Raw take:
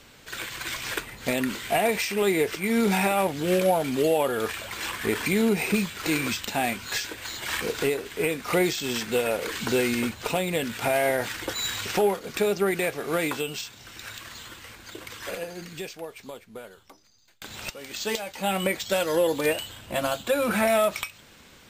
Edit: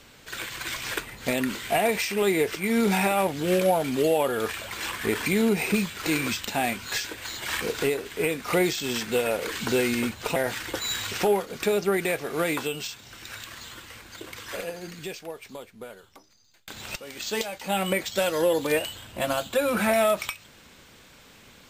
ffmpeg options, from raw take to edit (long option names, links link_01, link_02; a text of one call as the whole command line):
ffmpeg -i in.wav -filter_complex "[0:a]asplit=2[link_01][link_02];[link_01]atrim=end=10.362[link_03];[link_02]atrim=start=11.098[link_04];[link_03][link_04]acrossfade=duration=0.004:curve1=hsin:curve2=hsin" out.wav